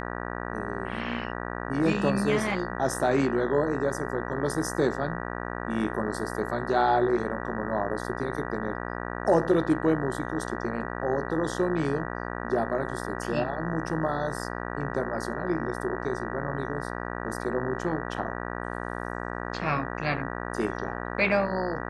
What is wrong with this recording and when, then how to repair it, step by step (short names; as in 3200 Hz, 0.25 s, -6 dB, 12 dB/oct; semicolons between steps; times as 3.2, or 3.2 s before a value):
buzz 60 Hz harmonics 32 -34 dBFS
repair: de-hum 60 Hz, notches 32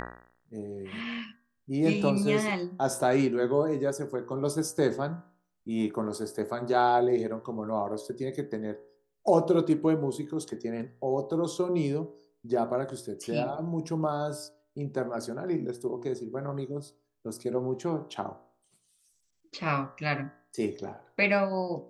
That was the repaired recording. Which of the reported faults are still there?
none